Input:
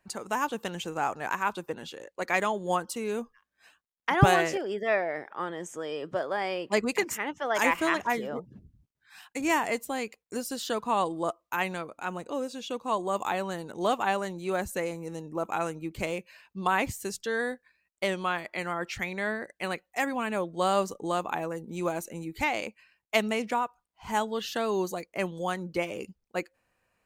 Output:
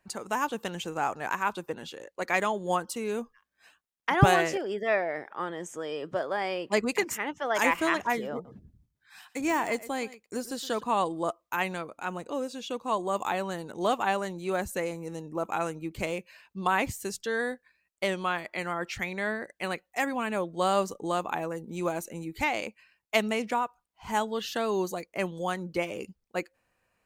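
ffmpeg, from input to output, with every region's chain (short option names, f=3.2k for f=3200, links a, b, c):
-filter_complex "[0:a]asettb=1/sr,asplit=3[a][b][c];[a]atrim=end=8.334[d];[b]atrim=start=8.33:end=10.83,asetpts=PTS-STARTPTS,afade=t=in:d=0.004:c=qsin,afade=t=out:st=2.496:d=0.004:c=qsin,bandreject=f=2.8k:w=18,deesser=0.75,aecho=1:1:117:0.141,atrim=end_sample=110250[e];[c]atrim=start=10.826[f];[d][e]acrossfade=d=0.004:c1=hsin:c2=qsin[g];[g][f]acrossfade=d=0.004:c1=qsin:c2=hsin"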